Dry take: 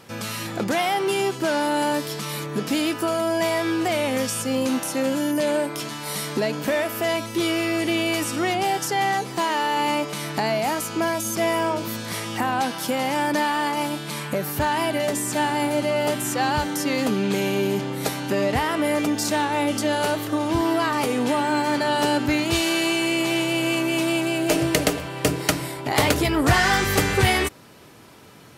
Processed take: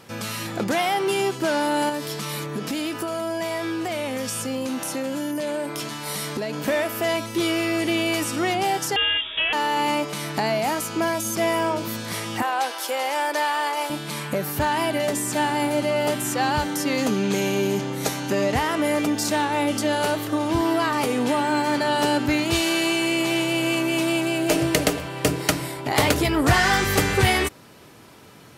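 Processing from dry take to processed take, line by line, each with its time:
1.89–6.59 compressor 4:1, threshold -24 dBFS
8.96–9.53 inverted band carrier 3600 Hz
12.42–13.9 HPF 410 Hz 24 dB/oct
16.97–18.95 bell 6400 Hz +6.5 dB 0.3 oct

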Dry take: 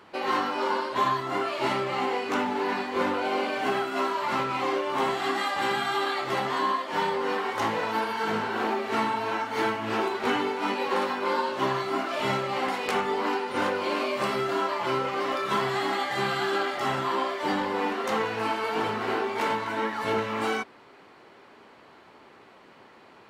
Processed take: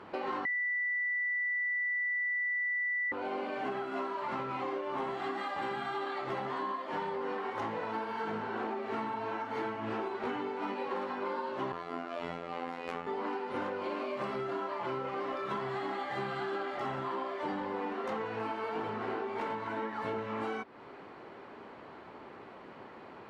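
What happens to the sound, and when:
0.45–3.12 bleep 1970 Hz -14 dBFS
11.72–13.07 robotiser 85.5 Hz
whole clip: LPF 1400 Hz 6 dB/oct; compressor 4:1, threshold -40 dBFS; gain +4.5 dB

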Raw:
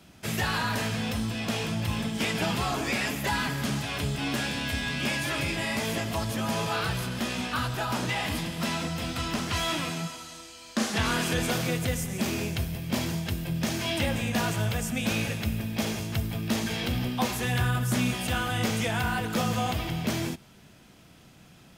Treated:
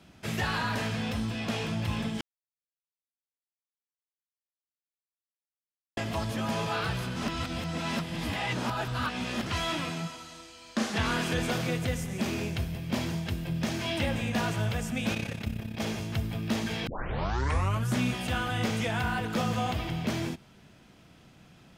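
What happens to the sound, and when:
2.21–5.97 mute
7.16–9.46 reverse
15.14–15.81 AM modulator 33 Hz, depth 60%
16.87 tape start 1.02 s
whole clip: high shelf 7500 Hz -10.5 dB; gain -1.5 dB

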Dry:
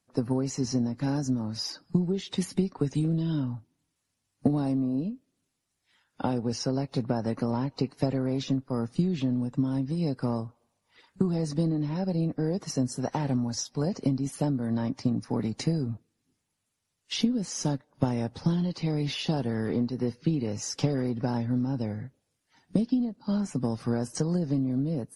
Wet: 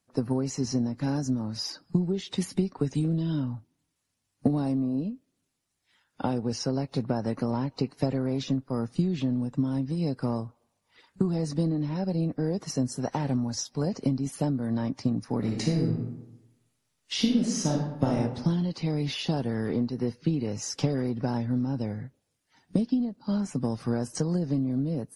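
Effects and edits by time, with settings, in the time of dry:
15.38–18.17 reverb throw, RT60 0.91 s, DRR -0.5 dB

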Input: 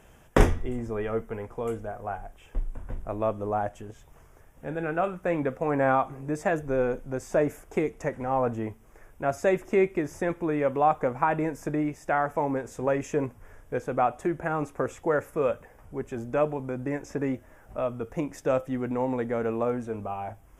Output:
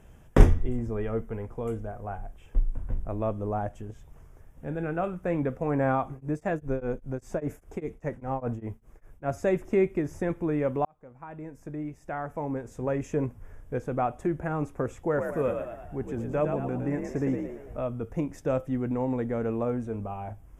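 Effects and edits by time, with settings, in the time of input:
6.11–9.28 beating tremolo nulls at 5 Hz
10.85–13.24 fade in
15.03–17.78 frequency-shifting echo 0.112 s, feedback 49%, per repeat +50 Hz, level -5.5 dB
whole clip: low shelf 310 Hz +11 dB; gain -5.5 dB

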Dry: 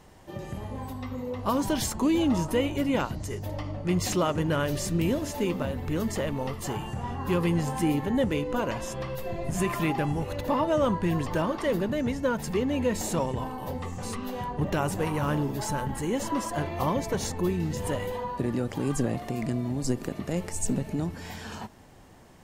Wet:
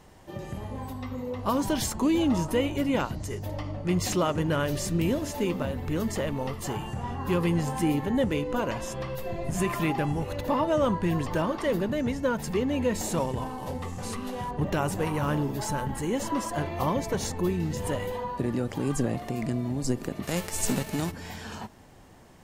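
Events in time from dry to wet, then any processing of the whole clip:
13.12–14.51 CVSD 64 kbps
20.22–21.1 spectral whitening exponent 0.6

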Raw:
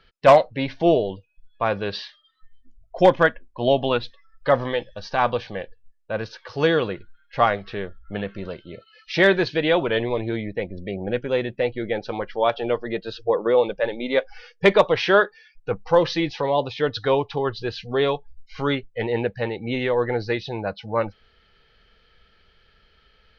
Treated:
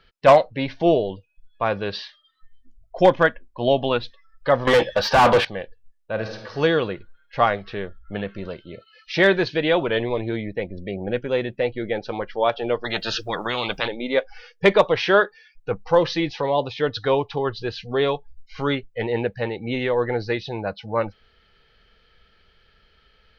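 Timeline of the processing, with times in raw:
4.67–5.45 overdrive pedal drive 31 dB, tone 1900 Hz, clips at -6.5 dBFS
6.13–6.54 reverb throw, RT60 1 s, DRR 4 dB
12.84–13.88 spectral compressor 4:1

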